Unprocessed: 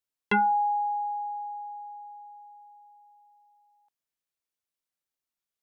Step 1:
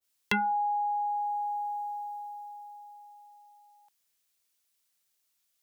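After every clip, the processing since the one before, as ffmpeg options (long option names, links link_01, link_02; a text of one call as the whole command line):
ffmpeg -i in.wav -filter_complex "[0:a]highshelf=frequency=2100:gain=11.5,acrossover=split=160[link_01][link_02];[link_02]acompressor=threshold=-35dB:ratio=3[link_03];[link_01][link_03]amix=inputs=2:normalize=0,adynamicequalizer=threshold=0.00447:dfrequency=1600:dqfactor=0.7:tfrequency=1600:tqfactor=0.7:attack=5:release=100:ratio=0.375:range=2.5:mode=boostabove:tftype=highshelf,volume=4dB" out.wav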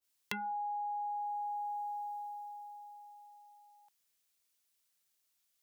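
ffmpeg -i in.wav -af "acompressor=threshold=-34dB:ratio=5,volume=-2.5dB" out.wav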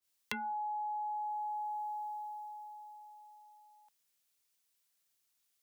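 ffmpeg -i in.wav -af "afreqshift=17" out.wav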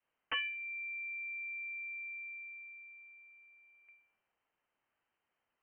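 ffmpeg -i in.wav -af "aeval=exprs='(mod(33.5*val(0)+1,2)-1)/33.5':channel_layout=same,bandreject=frequency=70.3:width_type=h:width=4,bandreject=frequency=140.6:width_type=h:width=4,bandreject=frequency=210.9:width_type=h:width=4,bandreject=frequency=281.2:width_type=h:width=4,bandreject=frequency=351.5:width_type=h:width=4,bandreject=frequency=421.8:width_type=h:width=4,bandreject=frequency=492.1:width_type=h:width=4,bandreject=frequency=562.4:width_type=h:width=4,bandreject=frequency=632.7:width_type=h:width=4,bandreject=frequency=703:width_type=h:width=4,bandreject=frequency=773.3:width_type=h:width=4,bandreject=frequency=843.6:width_type=h:width=4,bandreject=frequency=913.9:width_type=h:width=4,bandreject=frequency=984.2:width_type=h:width=4,bandreject=frequency=1054.5:width_type=h:width=4,bandreject=frequency=1124.8:width_type=h:width=4,bandreject=frequency=1195.1:width_type=h:width=4,bandreject=frequency=1265.4:width_type=h:width=4,bandreject=frequency=1335.7:width_type=h:width=4,bandreject=frequency=1406:width_type=h:width=4,bandreject=frequency=1476.3:width_type=h:width=4,bandreject=frequency=1546.6:width_type=h:width=4,bandreject=frequency=1616.9:width_type=h:width=4,lowpass=frequency=2700:width_type=q:width=0.5098,lowpass=frequency=2700:width_type=q:width=0.6013,lowpass=frequency=2700:width_type=q:width=0.9,lowpass=frequency=2700:width_type=q:width=2.563,afreqshift=-3200,volume=6.5dB" out.wav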